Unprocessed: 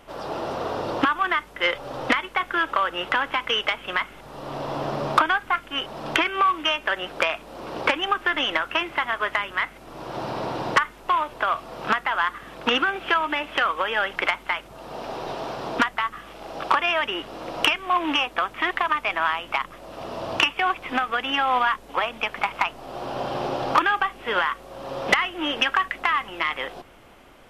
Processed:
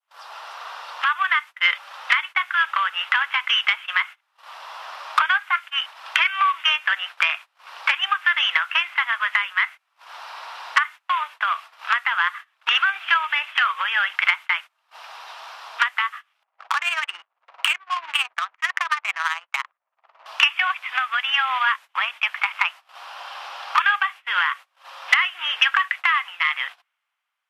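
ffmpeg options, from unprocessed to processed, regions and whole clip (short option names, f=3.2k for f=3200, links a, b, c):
-filter_complex "[0:a]asettb=1/sr,asplit=3[a][b][c];[a]atrim=end=16.434[d];[b]atrim=start=16.43:end=20.26,asetpts=PTS-STARTPTS,afade=t=in:d=0.004:c=qsin,afade=t=out:st=3.826:d=0.004:c=qsin,tremolo=f=18:d=0.5,adynamicsmooth=sensitivity=2:basefreq=650[e];[c]atrim=start=20.256[f];[d][e]acrossfade=d=0.004:c1=hsin:c2=qsin[g];[g][f]acrossfade=d=0.004:c1=qsin:c2=hsin,agate=range=-25dB:threshold=-35dB:ratio=16:detection=peak,adynamicequalizer=threshold=0.0158:dfrequency=2200:dqfactor=0.76:tfrequency=2200:tqfactor=0.76:attack=5:release=100:ratio=0.375:range=4:mode=boostabove:tftype=bell,highpass=f=1k:w=0.5412,highpass=f=1k:w=1.3066,volume=-2dB"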